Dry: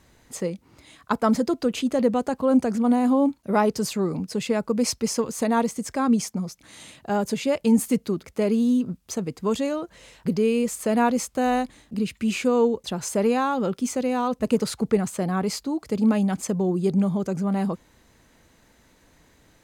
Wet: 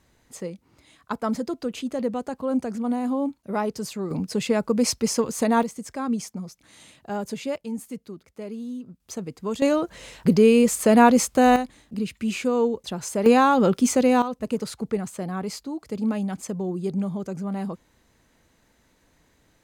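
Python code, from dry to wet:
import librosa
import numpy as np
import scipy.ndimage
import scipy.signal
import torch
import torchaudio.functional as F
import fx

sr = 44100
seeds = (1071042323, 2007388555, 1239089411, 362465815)

y = fx.gain(x, sr, db=fx.steps((0.0, -5.5), (4.11, 1.5), (5.63, -5.5), (7.56, -13.0), (9.0, -4.5), (9.62, 6.0), (11.56, -2.0), (13.26, 6.0), (14.22, -5.0)))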